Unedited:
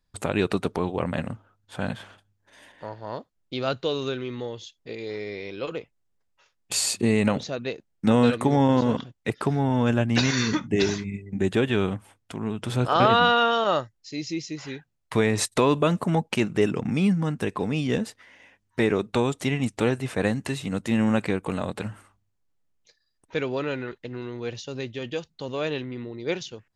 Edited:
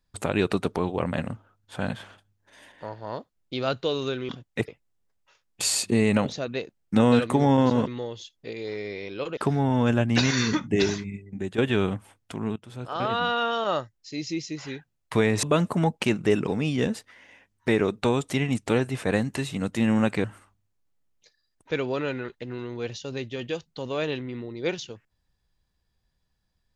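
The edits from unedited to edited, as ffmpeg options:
-filter_complex "[0:a]asplit=10[s0][s1][s2][s3][s4][s5][s6][s7][s8][s9];[s0]atrim=end=4.292[s10];[s1]atrim=start=8.978:end=9.372[s11];[s2]atrim=start=5.788:end=8.982[s12];[s3]atrim=start=4.288:end=5.792[s13];[s4]atrim=start=9.368:end=11.58,asetpts=PTS-STARTPTS,afade=t=out:st=1.432:d=0.78:silence=0.298538[s14];[s5]atrim=start=11.58:end=12.56,asetpts=PTS-STARTPTS,afade=t=in:d=0.004:c=hsin:silence=0.298538,afade=t=out:st=0.976:d=0.004:c=hsin:silence=0.105925[s15];[s6]atrim=start=12.56:end=15.432,asetpts=PTS-STARTPTS,afade=t=in:d=1.72:silence=0.105925[s16];[s7]atrim=start=15.738:end=16.782[s17];[s8]atrim=start=17.578:end=21.352[s18];[s9]atrim=start=21.868[s19];[s10][s11]acrossfade=d=0.004:c1=hsin:c2=hsin[s20];[s20][s12]acrossfade=d=0.004:c1=hsin:c2=hsin[s21];[s21][s13]acrossfade=d=0.004:c1=hsin:c2=hsin[s22];[s14][s15][s16]concat=n=3:v=0:a=1[s23];[s22][s23]acrossfade=d=0.004:c1=hsin:c2=hsin[s24];[s24][s17]acrossfade=d=0.004:c1=hsin:c2=hsin[s25];[s25][s18]acrossfade=d=0.004:c1=hsin:c2=hsin[s26];[s26][s19]acrossfade=d=0.004:c1=hsin:c2=hsin"

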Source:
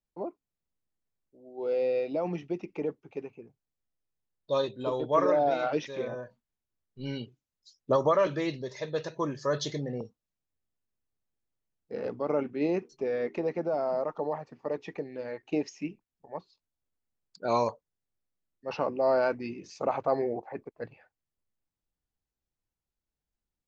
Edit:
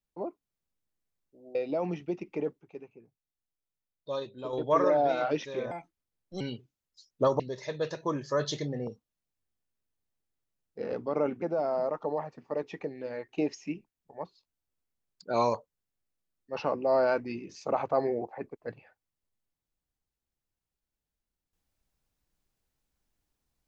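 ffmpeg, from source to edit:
-filter_complex "[0:a]asplit=8[s0][s1][s2][s3][s4][s5][s6][s7];[s0]atrim=end=1.552[s8];[s1]atrim=start=1.968:end=3.032[s9];[s2]atrim=start=3.028:end=4.952,asetpts=PTS-STARTPTS,volume=0.473[s10];[s3]atrim=start=4.948:end=6.134[s11];[s4]atrim=start=6.13:end=7.09,asetpts=PTS-STARTPTS,asetrate=60858,aresample=44100,atrim=end_sample=30678,asetpts=PTS-STARTPTS[s12];[s5]atrim=start=7.086:end=8.082[s13];[s6]atrim=start=8.528:end=12.552[s14];[s7]atrim=start=13.558[s15];[s8][s9]acrossfade=d=0.004:c1=hsin:c2=hsin[s16];[s16][s10]acrossfade=d=0.004:c1=hsin:c2=hsin[s17];[s17][s11]acrossfade=d=0.004:c1=hsin:c2=hsin[s18];[s18][s12]acrossfade=d=0.004:c1=hsin:c2=hsin[s19];[s19][s13]acrossfade=d=0.004:c1=hsin:c2=hsin[s20];[s20][s14]acrossfade=d=0.004:c1=hsin:c2=hsin[s21];[s21][s15]acrossfade=d=0.004:c1=hsin:c2=hsin"

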